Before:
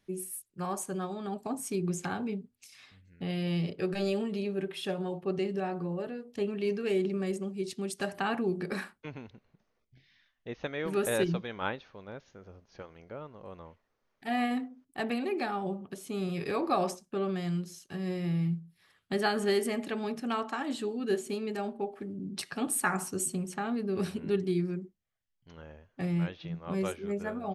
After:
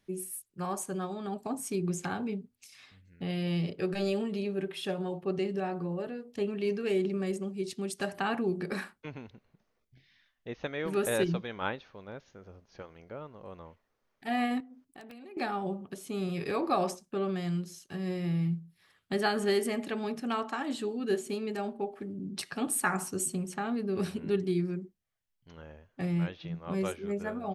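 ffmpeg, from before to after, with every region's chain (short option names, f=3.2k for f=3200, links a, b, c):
-filter_complex "[0:a]asettb=1/sr,asplit=3[a][b][c];[a]atrim=end=14.604[d];[b]atrim=start=14.6:end=15.37,asetpts=PTS-STARTPTS,afade=t=in:d=0.004:c=qsin,afade=t=out:st=0.766:d=0.004:c=qsin,aeval=exprs='(mod(12.6*val(0)+1,2)-1)/12.6':c=same,acompressor=threshold=-46dB:ratio=8:attack=3.2:release=140:knee=1:detection=peak[e];[c]atrim=start=15.366[f];[d][e]acrossfade=d=0.004:c1=hsin:c2=qsin[g];[g][f]acrossfade=d=0.004:c1=qsin:c2=hsin"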